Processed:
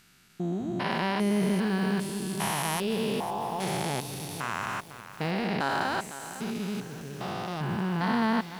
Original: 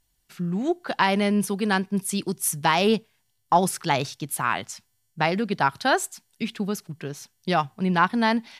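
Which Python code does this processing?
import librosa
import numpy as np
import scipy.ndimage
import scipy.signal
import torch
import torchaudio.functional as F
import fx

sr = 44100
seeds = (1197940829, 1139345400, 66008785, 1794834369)

y = fx.spec_steps(x, sr, hold_ms=400)
y = fx.echo_crushed(y, sr, ms=504, feedback_pct=55, bits=7, wet_db=-12.0)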